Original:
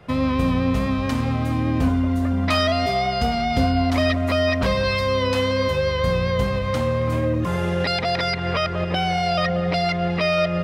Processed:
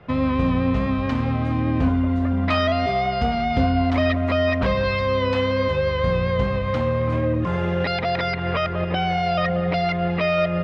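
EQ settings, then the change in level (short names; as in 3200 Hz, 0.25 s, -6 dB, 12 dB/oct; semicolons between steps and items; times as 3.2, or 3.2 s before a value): LPF 3100 Hz 12 dB/oct; 0.0 dB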